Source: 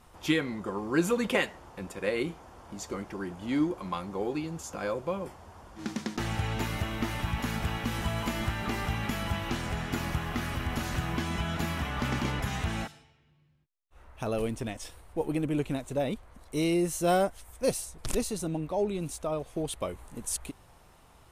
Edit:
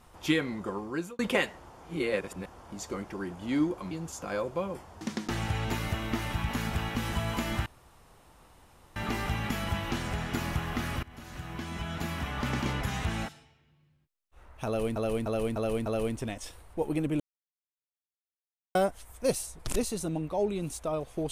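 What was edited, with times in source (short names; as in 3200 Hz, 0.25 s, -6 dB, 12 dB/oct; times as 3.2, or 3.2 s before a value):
0.69–1.19 fade out
1.77–2.46 reverse
3.91–4.42 cut
5.52–5.9 cut
8.55 insert room tone 1.30 s
10.62–12.67 fade in equal-power, from -21.5 dB
14.25–14.55 loop, 5 plays
15.59–17.14 mute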